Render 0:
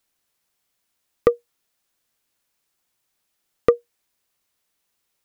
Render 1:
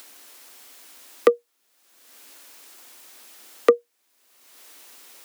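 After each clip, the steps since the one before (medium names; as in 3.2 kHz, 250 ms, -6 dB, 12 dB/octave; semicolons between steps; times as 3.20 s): steep high-pass 230 Hz 96 dB/octave; in parallel at -0.5 dB: upward compressor, threshold -17 dBFS; on the sum: trim -5 dB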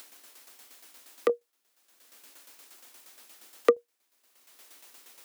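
tremolo saw down 8.5 Hz, depth 65%; trim -2.5 dB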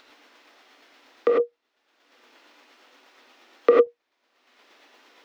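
distance through air 240 m; gated-style reverb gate 120 ms rising, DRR -2.5 dB; trim +3 dB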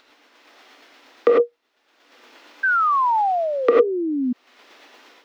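painted sound fall, 2.63–4.33 s, 240–1600 Hz -25 dBFS; level rider gain up to 8.5 dB; trim -1.5 dB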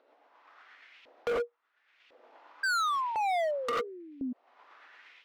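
LFO band-pass saw up 0.95 Hz 500–2800 Hz; hard clipper -27.5 dBFS, distortion -6 dB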